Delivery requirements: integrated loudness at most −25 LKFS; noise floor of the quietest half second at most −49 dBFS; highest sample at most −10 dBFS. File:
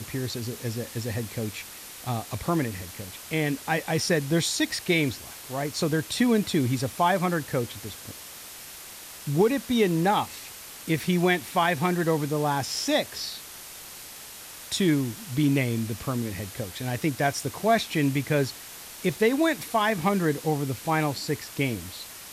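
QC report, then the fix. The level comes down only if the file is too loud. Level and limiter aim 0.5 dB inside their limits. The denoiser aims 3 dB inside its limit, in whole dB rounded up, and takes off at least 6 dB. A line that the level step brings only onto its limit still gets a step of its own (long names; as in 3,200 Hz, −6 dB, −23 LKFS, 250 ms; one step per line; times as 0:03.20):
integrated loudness −26.5 LKFS: in spec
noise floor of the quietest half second −43 dBFS: out of spec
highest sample −11.5 dBFS: in spec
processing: broadband denoise 9 dB, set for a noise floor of −43 dBFS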